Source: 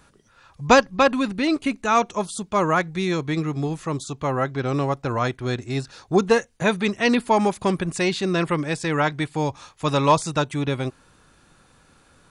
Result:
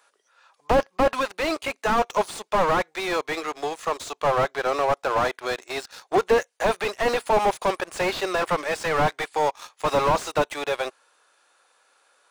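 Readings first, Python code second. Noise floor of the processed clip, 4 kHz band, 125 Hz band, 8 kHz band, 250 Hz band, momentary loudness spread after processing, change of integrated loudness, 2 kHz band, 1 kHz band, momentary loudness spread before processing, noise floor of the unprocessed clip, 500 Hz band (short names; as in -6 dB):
-68 dBFS, -2.0 dB, -11.0 dB, -3.0 dB, -9.5 dB, 8 LU, -2.0 dB, -1.5 dB, 0.0 dB, 9 LU, -58 dBFS, -0.5 dB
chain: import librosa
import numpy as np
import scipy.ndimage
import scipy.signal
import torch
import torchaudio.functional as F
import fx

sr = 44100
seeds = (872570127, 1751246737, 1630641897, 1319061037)

y = scipy.signal.sosfilt(scipy.signal.butter(4, 500.0, 'highpass', fs=sr, output='sos'), x)
y = fx.leveller(y, sr, passes=2)
y = fx.slew_limit(y, sr, full_power_hz=110.0)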